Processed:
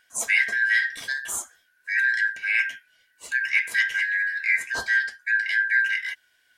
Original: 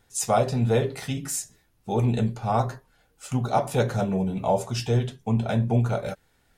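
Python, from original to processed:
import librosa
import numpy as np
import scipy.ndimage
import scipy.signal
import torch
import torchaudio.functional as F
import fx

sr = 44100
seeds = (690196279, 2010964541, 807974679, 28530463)

y = fx.band_shuffle(x, sr, order='4123')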